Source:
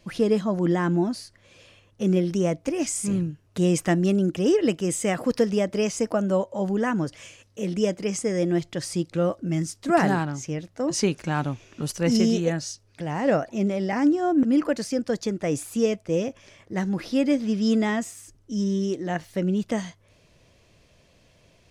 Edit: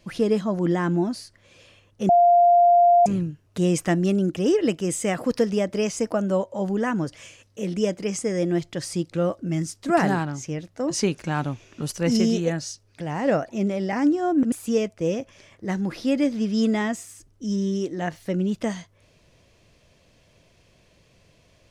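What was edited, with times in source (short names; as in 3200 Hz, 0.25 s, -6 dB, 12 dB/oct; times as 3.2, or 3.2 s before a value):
2.09–3.06 bleep 698 Hz -12 dBFS
14.52–15.6 cut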